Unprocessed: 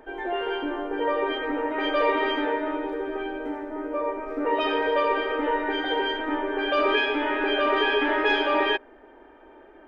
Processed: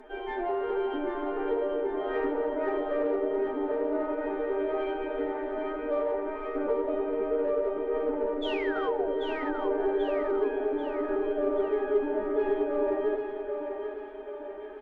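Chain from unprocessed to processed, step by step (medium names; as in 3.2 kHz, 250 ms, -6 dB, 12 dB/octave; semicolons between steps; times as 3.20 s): low-pass that closes with the level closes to 480 Hz, closed at -21.5 dBFS; comb 4.8 ms, depth 45%; painted sound fall, 5.61–6.18 s, 370–3600 Hz -35 dBFS; in parallel at -5 dB: saturation -27 dBFS, distortion -12 dB; on the sum: flange 1.9 Hz, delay 0.6 ms, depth 6.7 ms, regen -88%; time stretch by phase-locked vocoder 1.5×; on a send: two-band feedback delay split 340 Hz, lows 281 ms, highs 788 ms, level -6 dB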